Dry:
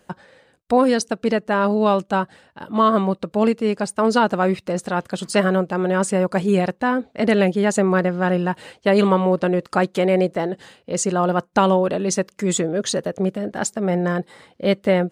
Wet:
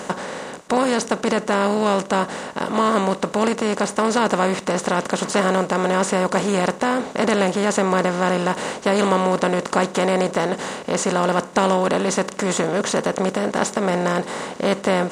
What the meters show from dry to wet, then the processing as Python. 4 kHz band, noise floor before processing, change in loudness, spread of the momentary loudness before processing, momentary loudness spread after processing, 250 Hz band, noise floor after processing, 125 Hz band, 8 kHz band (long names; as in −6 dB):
+3.5 dB, −60 dBFS, −0.5 dB, 8 LU, 5 LU, −2.0 dB, −36 dBFS, −2.0 dB, +1.5 dB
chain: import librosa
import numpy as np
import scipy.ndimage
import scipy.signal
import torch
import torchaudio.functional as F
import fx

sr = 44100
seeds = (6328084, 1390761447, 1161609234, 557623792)

y = fx.bin_compress(x, sr, power=0.4)
y = y * 10.0 ** (-6.0 / 20.0)